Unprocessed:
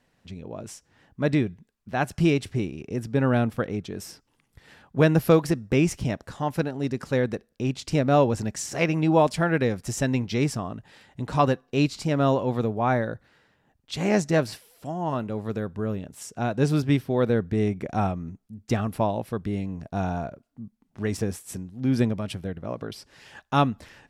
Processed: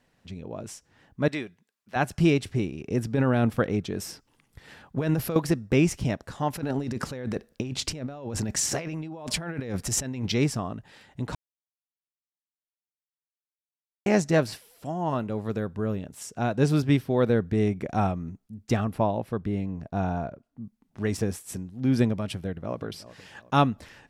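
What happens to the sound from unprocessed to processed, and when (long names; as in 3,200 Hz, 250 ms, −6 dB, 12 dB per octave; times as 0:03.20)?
0:01.28–0:01.96: high-pass filter 950 Hz 6 dB per octave
0:02.86–0:05.36: compressor whose output falls as the input rises −23 dBFS
0:06.53–0:10.32: compressor whose output falls as the input rises −32 dBFS
0:11.35–0:14.06: silence
0:18.84–0:20.61: high-shelf EQ 3,200 Hz −8 dB
0:22.35–0:22.83: delay throw 370 ms, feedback 40%, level −16.5 dB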